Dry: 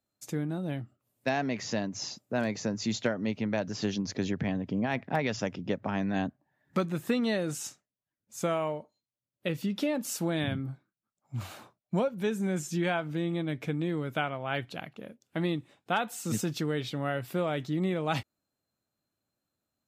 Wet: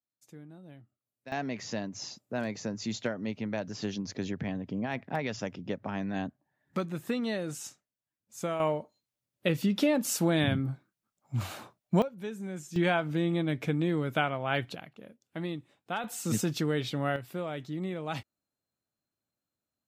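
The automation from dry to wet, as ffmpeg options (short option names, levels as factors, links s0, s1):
-af "asetnsamples=n=441:p=0,asendcmd='1.32 volume volume -3.5dB;8.6 volume volume 4dB;12.02 volume volume -8dB;12.76 volume volume 2.5dB;14.75 volume volume -5.5dB;16.04 volume volume 1.5dB;17.16 volume volume -5.5dB',volume=0.15"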